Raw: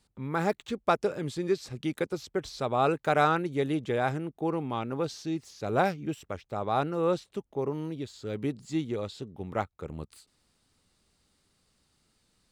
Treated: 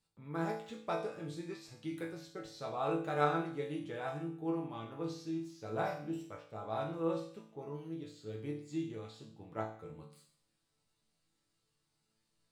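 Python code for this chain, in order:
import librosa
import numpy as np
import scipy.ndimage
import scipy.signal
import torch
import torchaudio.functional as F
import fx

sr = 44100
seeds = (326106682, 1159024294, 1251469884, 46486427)

y = fx.resonator_bank(x, sr, root=45, chord='sus4', decay_s=0.55)
y = F.gain(torch.from_numpy(y), 6.5).numpy()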